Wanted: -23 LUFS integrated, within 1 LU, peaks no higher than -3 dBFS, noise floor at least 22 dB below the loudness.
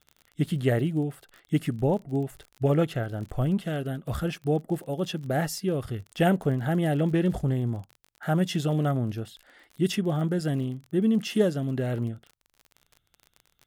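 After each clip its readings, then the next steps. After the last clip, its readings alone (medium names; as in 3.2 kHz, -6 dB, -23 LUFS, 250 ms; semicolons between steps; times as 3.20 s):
tick rate 38 per s; loudness -27.5 LUFS; peak level -11.0 dBFS; loudness target -23.0 LUFS
-> de-click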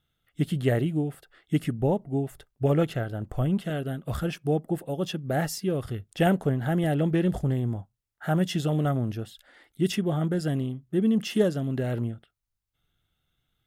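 tick rate 0.15 per s; loudness -27.5 LUFS; peak level -11.0 dBFS; loudness target -23.0 LUFS
-> trim +4.5 dB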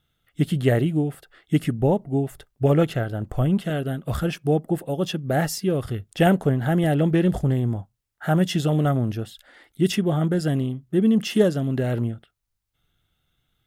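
loudness -23.0 LUFS; peak level -6.5 dBFS; noise floor -76 dBFS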